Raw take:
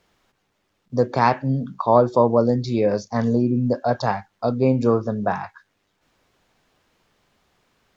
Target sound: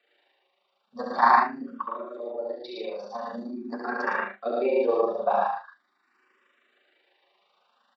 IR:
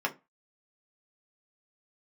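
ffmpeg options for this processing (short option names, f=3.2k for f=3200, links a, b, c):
-filter_complex "[0:a]acrossover=split=360 5500:gain=0.158 1 0.141[a][b][c];[a][b][c]amix=inputs=3:normalize=0,asettb=1/sr,asplit=3[d][e][f];[d]atrim=end=1.444[g];[e]atrim=start=1.44:end=3.71,asetpts=PTS-STARTPTS,afade=t=in:d=0.004:c=qsin,afade=t=out:st=2.266:d=0.004:c=qsin,acompressor=threshold=-30dB:ratio=8[h];[f]atrim=start=3.706[i];[g][h]acrossfade=d=0.004:c1=hsin:c2=qsin[j];[j][i]acrossfade=d=0.004:c1=qsin:c2=hsin,tremolo=f=26:d=0.788,aecho=1:1:67.06|110.8|145.8:0.708|0.794|0.398[k];[1:a]atrim=start_sample=2205,asetrate=61740,aresample=44100[l];[k][l]afir=irnorm=-1:irlink=0,asplit=2[m][n];[n]afreqshift=0.44[o];[m][o]amix=inputs=2:normalize=1,volume=-1.5dB"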